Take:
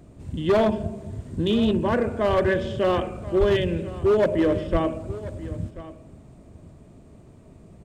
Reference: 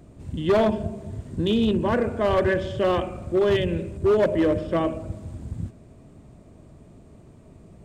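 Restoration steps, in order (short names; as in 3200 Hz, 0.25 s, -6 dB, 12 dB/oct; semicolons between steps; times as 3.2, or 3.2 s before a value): 3.39–3.51 HPF 140 Hz 24 dB/oct; 4.71–4.83 HPF 140 Hz 24 dB/oct; inverse comb 1.035 s -17 dB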